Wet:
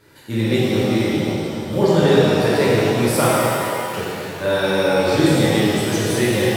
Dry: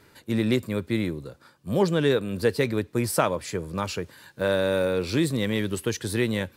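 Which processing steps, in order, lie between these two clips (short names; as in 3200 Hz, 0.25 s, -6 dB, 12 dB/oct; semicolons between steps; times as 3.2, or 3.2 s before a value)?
3.29–3.94 vocal tract filter e; shimmer reverb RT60 2.6 s, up +7 st, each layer -8 dB, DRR -8.5 dB; gain -1 dB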